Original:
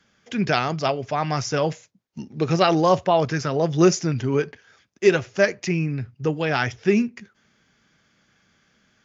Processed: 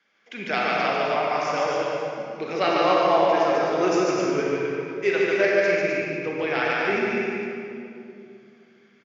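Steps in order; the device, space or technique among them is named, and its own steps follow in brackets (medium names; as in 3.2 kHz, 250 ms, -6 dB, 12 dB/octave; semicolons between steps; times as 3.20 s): station announcement (band-pass 370–4400 Hz; peaking EQ 2.2 kHz +8 dB 0.28 oct; loudspeakers at several distances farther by 50 m -3 dB, 88 m -4 dB; reverberation RT60 2.6 s, pre-delay 29 ms, DRR -2 dB); trim -6 dB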